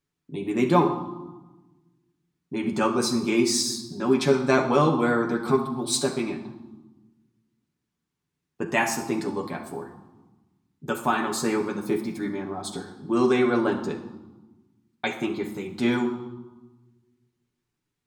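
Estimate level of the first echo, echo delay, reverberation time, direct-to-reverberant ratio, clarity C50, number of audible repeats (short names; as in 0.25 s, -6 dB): none, none, 1.1 s, 2.0 dB, 9.0 dB, none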